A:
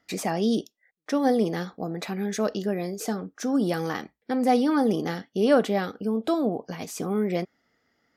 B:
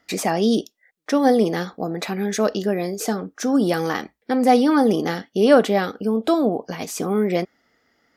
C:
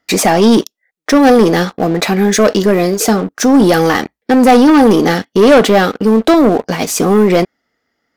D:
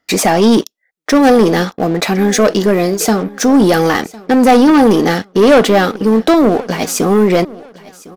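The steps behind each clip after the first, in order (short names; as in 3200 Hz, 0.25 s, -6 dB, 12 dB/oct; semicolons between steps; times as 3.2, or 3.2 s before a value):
bell 130 Hz -4.5 dB 1.3 oct; gain +6.5 dB
sample leveller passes 3; gain +2 dB
feedback echo 1.056 s, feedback 31%, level -21 dB; gain -1 dB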